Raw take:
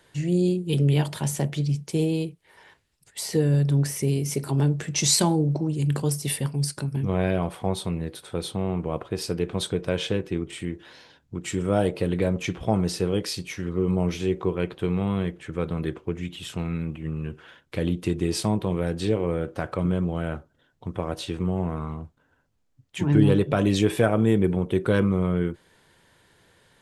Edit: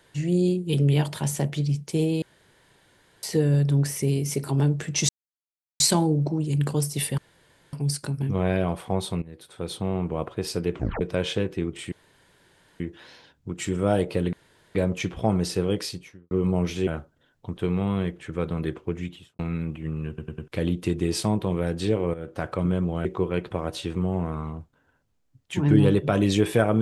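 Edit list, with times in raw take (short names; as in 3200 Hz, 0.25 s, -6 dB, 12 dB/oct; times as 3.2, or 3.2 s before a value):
2.22–3.23 room tone
5.09 insert silence 0.71 s
6.47 insert room tone 0.55 s
7.96–8.58 fade in linear, from -17 dB
9.48 tape stop 0.27 s
10.66 insert room tone 0.88 s
12.19 insert room tone 0.42 s
13.22–13.75 studio fade out
14.31–14.77 swap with 20.25–20.95
16.21–16.59 studio fade out
17.28 stutter in place 0.10 s, 4 plays
19.34–19.63 fade in, from -13 dB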